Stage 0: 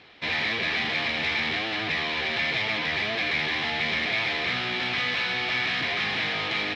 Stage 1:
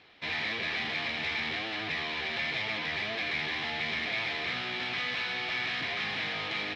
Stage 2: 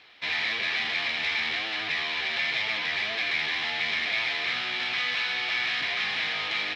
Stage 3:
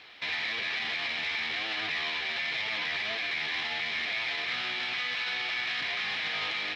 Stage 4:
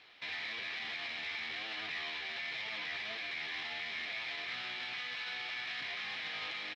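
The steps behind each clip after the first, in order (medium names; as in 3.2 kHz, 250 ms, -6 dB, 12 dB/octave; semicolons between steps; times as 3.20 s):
hum notches 60/120/180/240/300/360/420/480/540 Hz; trim -6 dB
tilt shelf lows -6 dB, about 650 Hz
peak limiter -26.5 dBFS, peak gain reduction 9.5 dB; trim +3 dB
doubling 23 ms -12.5 dB; trim -8.5 dB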